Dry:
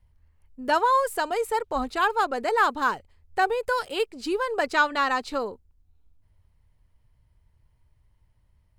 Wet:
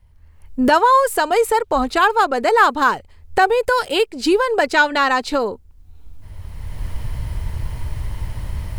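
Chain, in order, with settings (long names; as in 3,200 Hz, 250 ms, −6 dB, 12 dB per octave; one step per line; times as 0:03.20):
camcorder AGC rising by 20 dB per second
0:03.47–0:05.45: notch filter 1,200 Hz, Q 8.4
level +8 dB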